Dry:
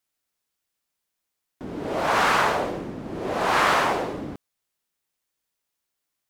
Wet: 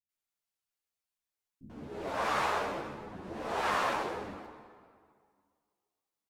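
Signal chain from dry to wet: on a send at -10 dB: reverberation RT60 2.1 s, pre-delay 116 ms; on the sum: formant shift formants -2 st; bands offset in time lows, highs 90 ms, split 260 Hz; three-phase chorus; trim -7.5 dB

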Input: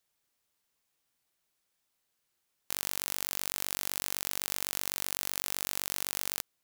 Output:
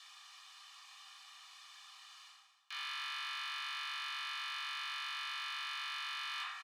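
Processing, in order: reverse; compression 4:1, threshold -55 dBFS, peak gain reduction 23.5 dB; reverse; resonant high shelf 2.5 kHz +6.5 dB, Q 1.5; waveshaping leveller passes 2; distance through air 72 m; comb 1.7 ms, depth 95%; on a send at -2 dB: reverberation RT60 1.2 s, pre-delay 3 ms; on the sum: overdrive pedal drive 36 dB, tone 1.1 kHz, clips at -30 dBFS; steep high-pass 800 Hz 96 dB/octave; trim +6 dB

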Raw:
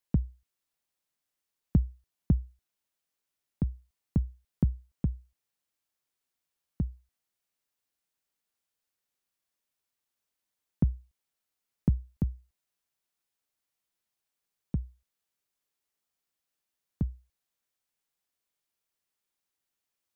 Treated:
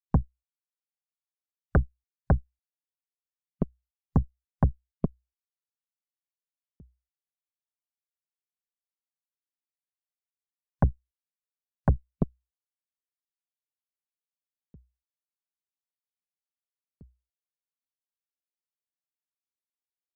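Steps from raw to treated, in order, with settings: spectral noise reduction 18 dB; Chebyshev shaper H 5 -9 dB, 6 -14 dB, 7 -10 dB, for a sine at -12.5 dBFS

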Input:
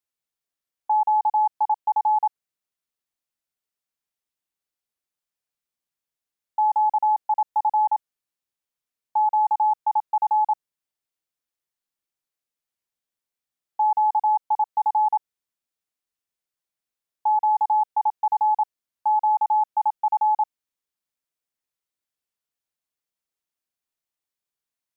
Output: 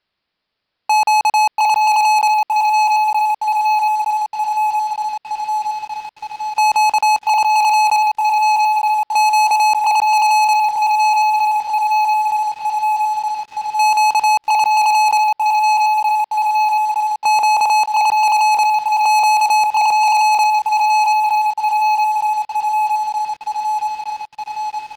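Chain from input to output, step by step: added noise white -63 dBFS; resampled via 11.025 kHz; on a send: shuffle delay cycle 916 ms, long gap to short 3:1, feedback 58%, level -9 dB; on the sum: waveshaping leveller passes 5; trim +1.5 dB

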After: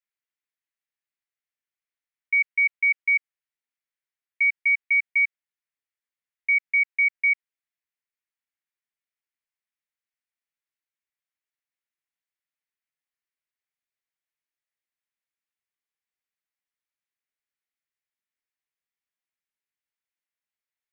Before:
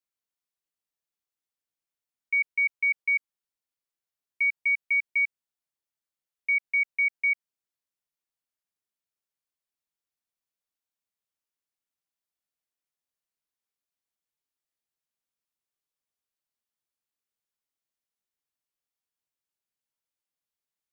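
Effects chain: peaking EQ 2 kHz +13.5 dB 1.2 oct; trim -8.5 dB

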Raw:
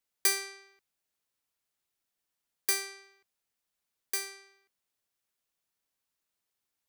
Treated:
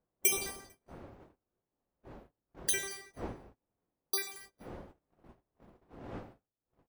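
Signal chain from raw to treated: random holes in the spectrogram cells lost 63%; wind noise 560 Hz -55 dBFS; on a send: feedback delay 224 ms, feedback 28%, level -22 dB; on the sum: gated-style reverb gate 300 ms falling, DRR 9 dB; gate -56 dBFS, range -27 dB; trim +3 dB

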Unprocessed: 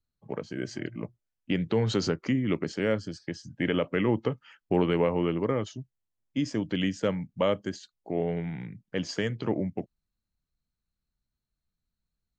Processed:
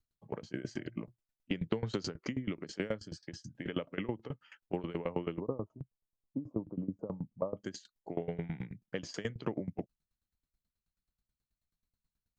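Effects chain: 5.40–7.57 s: elliptic low-pass 1.1 kHz, stop band 40 dB; compression, threshold -29 dBFS, peak gain reduction 10 dB; sawtooth tremolo in dB decaying 9.3 Hz, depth 21 dB; trim +3 dB

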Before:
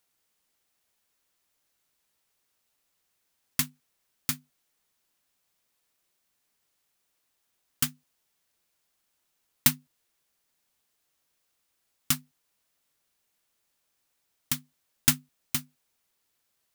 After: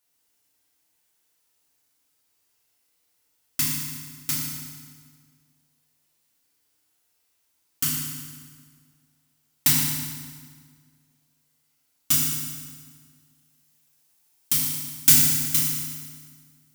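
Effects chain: treble shelf 4.4 kHz +5.5 dB, from 12.11 s +11.5 dB; FDN reverb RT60 1.7 s, low-frequency decay 1.2×, high-frequency decay 0.85×, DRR -7.5 dB; trim -6.5 dB

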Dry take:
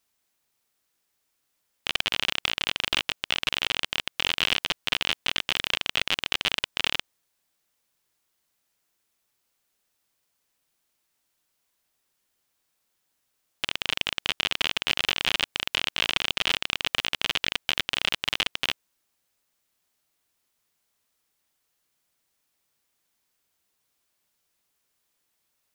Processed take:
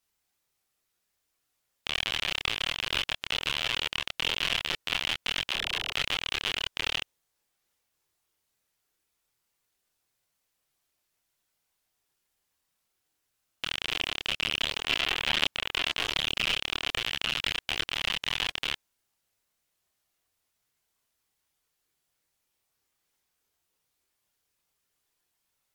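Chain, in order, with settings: chorus voices 6, 0.54 Hz, delay 27 ms, depth 1.5 ms; 5.51–5.92 s: phase dispersion lows, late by 41 ms, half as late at 400 Hz; AAC 128 kbps 48 kHz

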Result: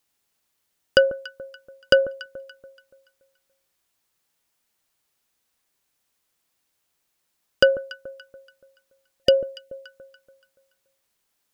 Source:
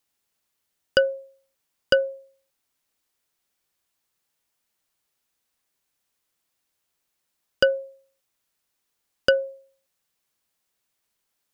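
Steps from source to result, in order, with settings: echo whose repeats swap between lows and highs 143 ms, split 1.1 kHz, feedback 60%, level -13 dB; time-frequency box 9.23–9.84 s, 710–1800 Hz -16 dB; trim +3 dB

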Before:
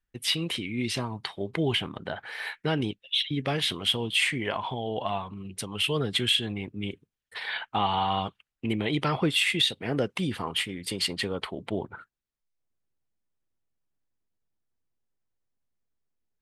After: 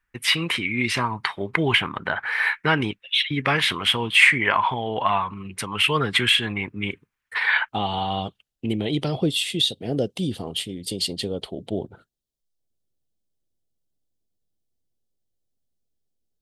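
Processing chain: high-order bell 1.5 kHz +10.5 dB, from 7.68 s -8.5 dB, from 9.05 s -15.5 dB; trim +3.5 dB

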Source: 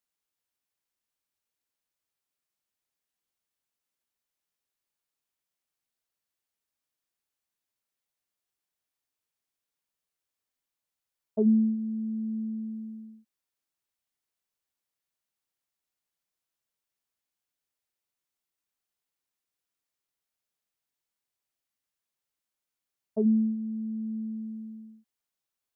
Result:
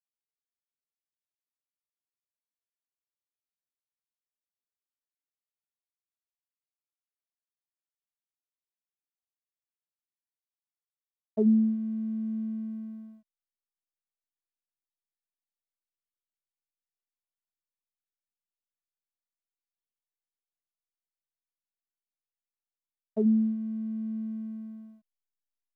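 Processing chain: band-stop 490 Hz, Q 12; hysteresis with a dead band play -54.5 dBFS

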